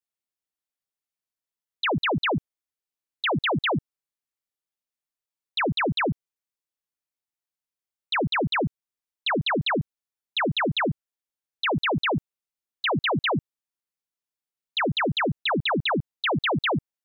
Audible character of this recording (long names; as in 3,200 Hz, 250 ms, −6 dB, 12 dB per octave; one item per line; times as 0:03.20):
background noise floor −92 dBFS
spectral slope −3.0 dB per octave